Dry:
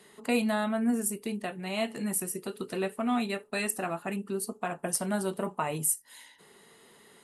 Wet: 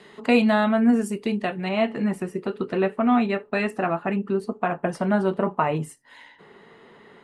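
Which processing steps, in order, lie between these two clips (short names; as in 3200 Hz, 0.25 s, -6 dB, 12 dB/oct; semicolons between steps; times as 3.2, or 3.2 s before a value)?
LPF 3900 Hz 12 dB/oct, from 1.69 s 2200 Hz; gain +9 dB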